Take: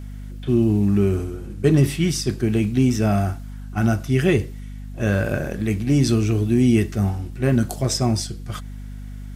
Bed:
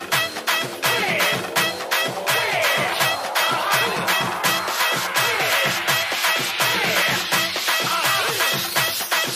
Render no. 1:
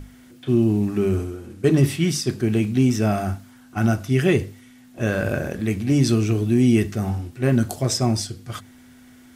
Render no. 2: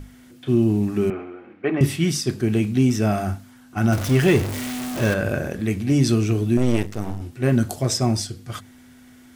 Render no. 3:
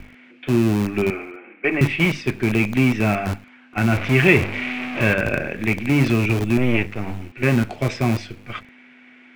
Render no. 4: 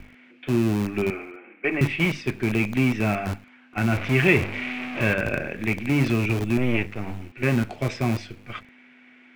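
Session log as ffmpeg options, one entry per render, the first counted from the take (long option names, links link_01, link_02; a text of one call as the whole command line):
ffmpeg -i in.wav -af "bandreject=frequency=50:width_type=h:width=6,bandreject=frequency=100:width_type=h:width=6,bandreject=frequency=150:width_type=h:width=6,bandreject=frequency=200:width_type=h:width=6" out.wav
ffmpeg -i in.wav -filter_complex "[0:a]asettb=1/sr,asplit=3[link_01][link_02][link_03];[link_01]atrim=end=1.104[link_04];[link_02]atrim=start=1.1:end=1.81,asetpts=PTS-STARTPTS,afade=type=in:duration=0.004:curve=qsin,afade=type=out:start_time=0.706:duration=0.004:curve=qsin,highpass=340,equalizer=frequency=420:width_type=q:width=4:gain=-4,equalizer=frequency=770:width_type=q:width=4:gain=6,equalizer=frequency=1200:width_type=q:width=4:gain=3,equalizer=frequency=2200:width_type=q:width=4:gain=7,lowpass=frequency=2600:width=0.5412,lowpass=frequency=2600:width=1.3066[link_05];[link_03]atrim=start=1.806[link_06];[link_04][link_05]acrossfade=duration=0.004:curve1=hsin:curve2=qsin[link_07];[link_07][link_06]acrossfade=duration=0.004:curve1=qsin:curve2=hsin,asettb=1/sr,asplit=3[link_08][link_09][link_10];[link_08]atrim=end=3.924[link_11];[link_09]atrim=start=3.92:end=5.14,asetpts=PTS-STARTPTS,afade=type=in:duration=0.004:curve=qsin,afade=type=out:start_time=1.216:duration=0.004:curve=qsin,aeval=exprs='val(0)+0.5*0.0708*sgn(val(0))':channel_layout=same[link_12];[link_10]atrim=start=5.136[link_13];[link_11][link_12]acrossfade=duration=0.004:curve1=hsin:curve2=qsin[link_14];[link_14][link_13]acrossfade=duration=0.004:curve1=qsin:curve2=hsin,asettb=1/sr,asplit=3[link_15][link_16][link_17];[link_15]atrim=end=6.574[link_18];[link_16]atrim=start=6.57:end=7.21,asetpts=PTS-STARTPTS,afade=type=in:duration=0.004:curve=qsin,afade=type=out:start_time=0.636:duration=0.004:curve=qsin,aeval=exprs='max(val(0),0)':channel_layout=same[link_19];[link_17]atrim=start=7.206[link_20];[link_18][link_19]acrossfade=duration=0.004:curve1=hsin:curve2=qsin[link_21];[link_21][link_20]acrossfade=duration=0.004:curve1=qsin:curve2=hsin" out.wav
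ffmpeg -i in.wav -filter_complex "[0:a]lowpass=frequency=2400:width_type=q:width=5.7,acrossover=split=200[link_01][link_02];[link_01]acrusher=bits=5:dc=4:mix=0:aa=0.000001[link_03];[link_03][link_02]amix=inputs=2:normalize=0" out.wav
ffmpeg -i in.wav -af "volume=-4dB" out.wav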